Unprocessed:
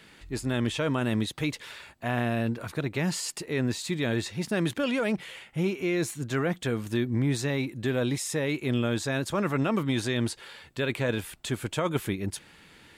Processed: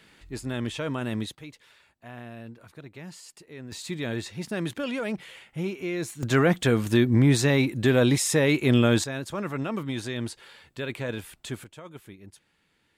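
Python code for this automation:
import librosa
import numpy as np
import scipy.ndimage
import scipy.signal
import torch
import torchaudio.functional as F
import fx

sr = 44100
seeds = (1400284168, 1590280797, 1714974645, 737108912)

y = fx.gain(x, sr, db=fx.steps((0.0, -3.0), (1.35, -14.0), (3.72, -3.0), (6.23, 7.0), (9.04, -4.0), (11.64, -16.0)))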